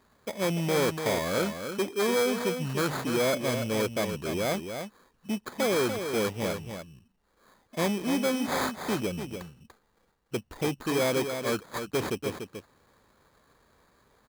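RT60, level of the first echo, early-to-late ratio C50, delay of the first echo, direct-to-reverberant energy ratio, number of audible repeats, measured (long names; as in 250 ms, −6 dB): no reverb audible, −7.5 dB, no reverb audible, 291 ms, no reverb audible, 1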